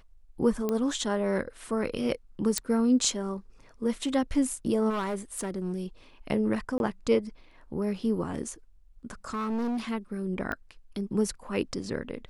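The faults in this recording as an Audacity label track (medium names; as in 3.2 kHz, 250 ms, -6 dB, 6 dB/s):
0.690000	0.690000	pop -16 dBFS
2.580000	2.580000	pop -11 dBFS
4.890000	5.800000	clipped -26.5 dBFS
6.780000	6.800000	dropout 21 ms
9.300000	9.800000	clipped -27.5 dBFS
10.520000	10.520000	pop -20 dBFS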